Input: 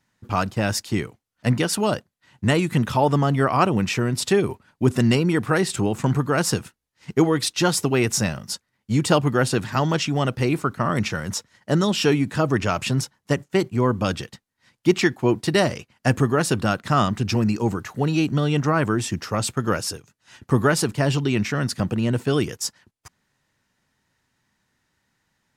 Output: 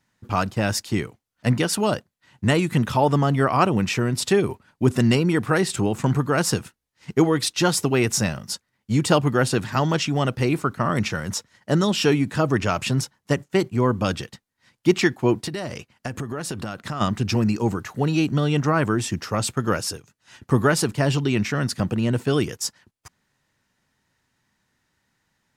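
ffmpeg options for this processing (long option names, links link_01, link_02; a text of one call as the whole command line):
ffmpeg -i in.wav -filter_complex "[0:a]asplit=3[link_01][link_02][link_03];[link_01]afade=type=out:start_time=15.46:duration=0.02[link_04];[link_02]acompressor=threshold=-25dB:ratio=12:attack=3.2:release=140:knee=1:detection=peak,afade=type=in:start_time=15.46:duration=0.02,afade=type=out:start_time=17:duration=0.02[link_05];[link_03]afade=type=in:start_time=17:duration=0.02[link_06];[link_04][link_05][link_06]amix=inputs=3:normalize=0" out.wav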